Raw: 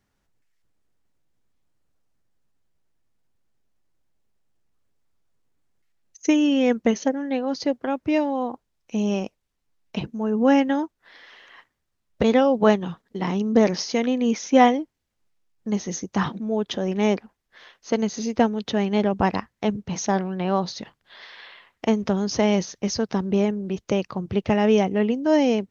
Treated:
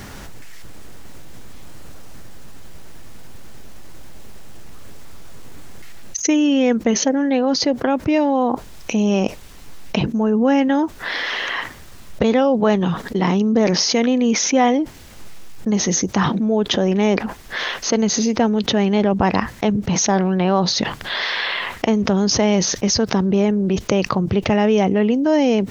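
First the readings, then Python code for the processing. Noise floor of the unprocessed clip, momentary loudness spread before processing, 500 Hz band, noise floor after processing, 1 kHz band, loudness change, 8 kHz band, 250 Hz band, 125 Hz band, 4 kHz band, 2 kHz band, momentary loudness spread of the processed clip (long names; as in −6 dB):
−76 dBFS, 11 LU, +4.0 dB, −38 dBFS, +3.5 dB, +4.5 dB, can't be measured, +5.0 dB, +7.0 dB, +10.5 dB, +7.5 dB, 7 LU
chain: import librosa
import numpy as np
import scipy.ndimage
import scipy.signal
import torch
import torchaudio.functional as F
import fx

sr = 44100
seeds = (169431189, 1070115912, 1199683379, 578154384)

y = fx.env_flatten(x, sr, amount_pct=70)
y = F.gain(torch.from_numpy(y), -1.5).numpy()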